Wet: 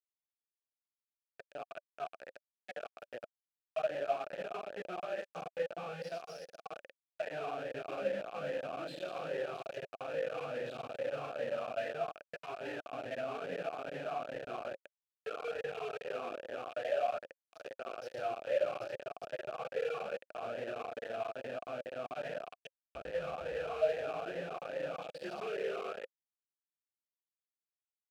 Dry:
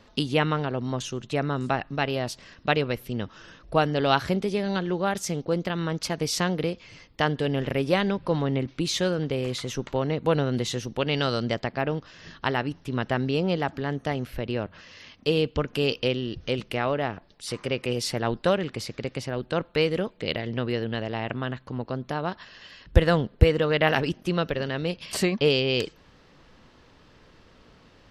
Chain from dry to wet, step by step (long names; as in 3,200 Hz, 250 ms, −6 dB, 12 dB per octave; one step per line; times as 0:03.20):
fade in at the beginning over 7.63 s
spectral peaks only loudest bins 2
0:05.96–0:06.71: spectral tilt +4.5 dB per octave
downward compressor 2 to 1, threshold −50 dBFS, peak gain reduction 19 dB
rectangular room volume 2,000 cubic metres, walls mixed, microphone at 3.1 metres
bit-depth reduction 6 bits, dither none
formant filter swept between two vowels a-e 2.4 Hz
level +9.5 dB